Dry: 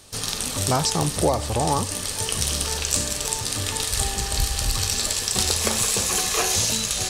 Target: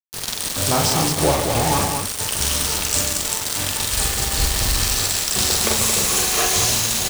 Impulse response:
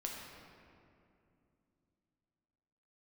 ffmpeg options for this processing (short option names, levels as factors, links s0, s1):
-af "acrusher=bits=3:mix=0:aa=0.000001,aecho=1:1:43.73|142.9|224.5:0.708|0.398|0.562"